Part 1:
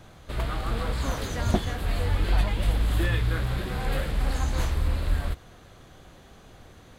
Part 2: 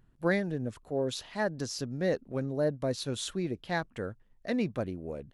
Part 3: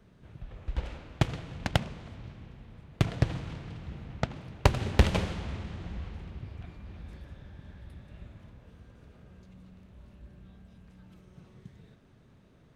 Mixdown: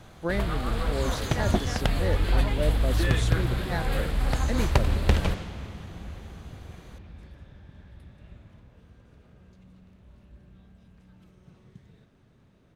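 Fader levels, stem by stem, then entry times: 0.0 dB, -1.5 dB, -1.0 dB; 0.00 s, 0.00 s, 0.10 s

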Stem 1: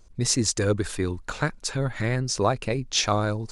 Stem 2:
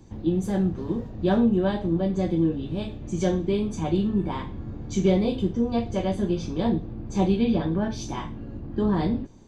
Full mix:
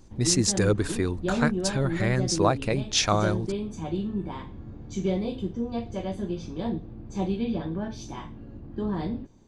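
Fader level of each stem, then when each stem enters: 0.0 dB, -6.0 dB; 0.00 s, 0.00 s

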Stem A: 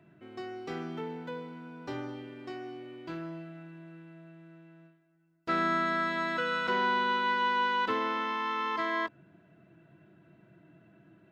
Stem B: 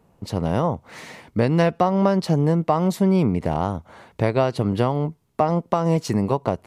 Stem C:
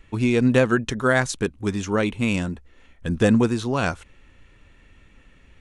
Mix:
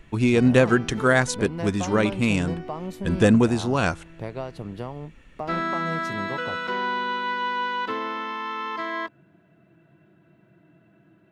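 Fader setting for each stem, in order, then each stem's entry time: +1.5 dB, -13.5 dB, +0.5 dB; 0.00 s, 0.00 s, 0.00 s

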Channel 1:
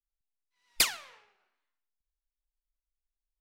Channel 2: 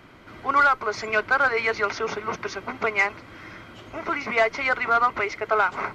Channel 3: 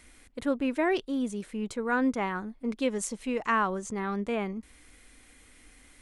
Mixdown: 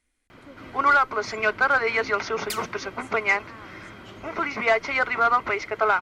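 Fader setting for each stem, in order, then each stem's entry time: -7.5 dB, 0.0 dB, -19.5 dB; 1.70 s, 0.30 s, 0.00 s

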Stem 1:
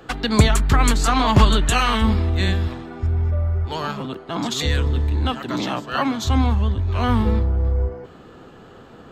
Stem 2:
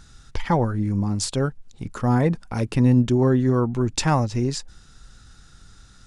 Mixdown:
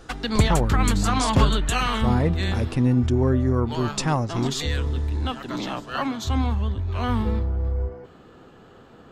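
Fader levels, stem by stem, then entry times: -5.0 dB, -3.0 dB; 0.00 s, 0.00 s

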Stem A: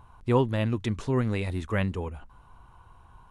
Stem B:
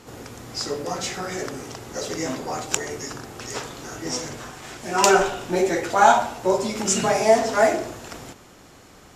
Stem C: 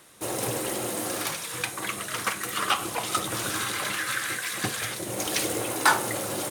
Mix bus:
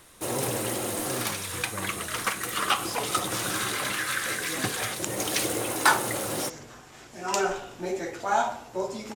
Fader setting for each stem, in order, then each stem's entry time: -13.0 dB, -10.0 dB, 0.0 dB; 0.00 s, 2.30 s, 0.00 s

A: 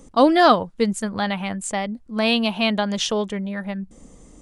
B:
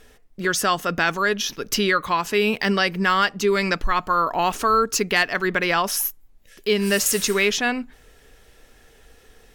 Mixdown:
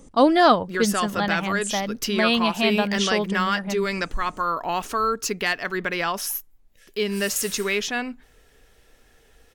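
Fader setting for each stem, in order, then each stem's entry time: -1.5 dB, -4.5 dB; 0.00 s, 0.30 s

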